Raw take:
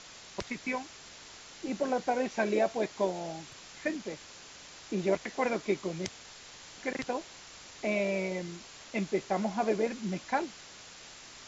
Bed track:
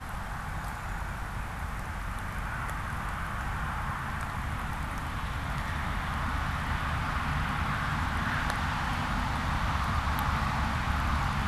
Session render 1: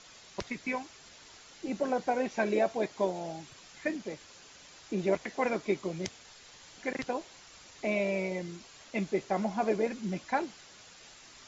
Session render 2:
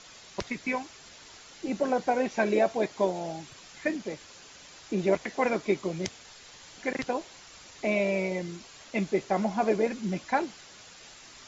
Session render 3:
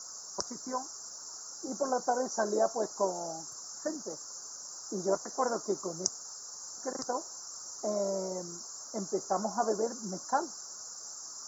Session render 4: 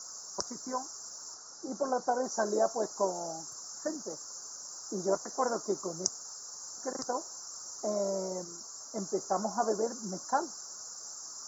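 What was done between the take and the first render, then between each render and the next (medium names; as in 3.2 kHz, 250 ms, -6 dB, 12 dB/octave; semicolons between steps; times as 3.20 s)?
noise reduction 6 dB, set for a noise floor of -50 dBFS
trim +3.5 dB
elliptic band-stop 1.3–5.5 kHz, stop band 80 dB; tilt EQ +4 dB/octave
1.34–2.24 s: distance through air 64 m; 8.44–8.98 s: comb of notches 180 Hz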